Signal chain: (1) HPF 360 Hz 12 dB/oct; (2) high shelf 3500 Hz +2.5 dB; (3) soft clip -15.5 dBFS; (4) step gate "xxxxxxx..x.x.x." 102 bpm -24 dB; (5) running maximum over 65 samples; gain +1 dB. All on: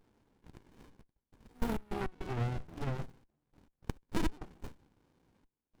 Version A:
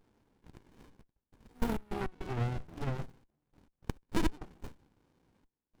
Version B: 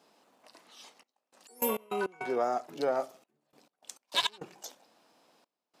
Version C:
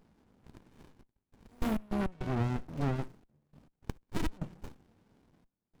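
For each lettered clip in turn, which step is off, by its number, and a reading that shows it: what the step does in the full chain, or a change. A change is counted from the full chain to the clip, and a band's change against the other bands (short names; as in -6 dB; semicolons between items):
3, distortion -26 dB; 5, 125 Hz band -28.0 dB; 1, 250 Hz band +3.5 dB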